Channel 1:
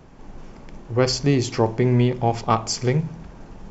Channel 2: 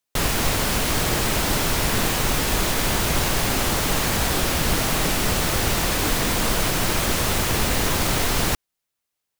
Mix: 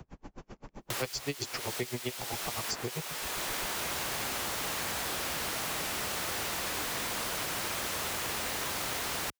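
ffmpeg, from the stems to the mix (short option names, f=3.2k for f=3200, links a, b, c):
-filter_complex "[0:a]aeval=exprs='val(0)*pow(10,-40*(0.5-0.5*cos(2*PI*7.7*n/s))/20)':c=same,volume=2dB,asplit=2[a][b];[1:a]highpass=f=700:p=1,adelay=750,volume=-5dB[c];[b]apad=whole_len=447207[d];[c][d]sidechaincompress=threshold=-30dB:ratio=3:attack=6.2:release=588[e];[a][e]amix=inputs=2:normalize=0,equalizer=f=60:t=o:w=2.1:g=7,acrossover=split=170|350|2200[f][g][h][i];[f]acompressor=threshold=-48dB:ratio=4[j];[g]acompressor=threshold=-50dB:ratio=4[k];[h]acompressor=threshold=-37dB:ratio=4[l];[i]acompressor=threshold=-35dB:ratio=4[m];[j][k][l][m]amix=inputs=4:normalize=0"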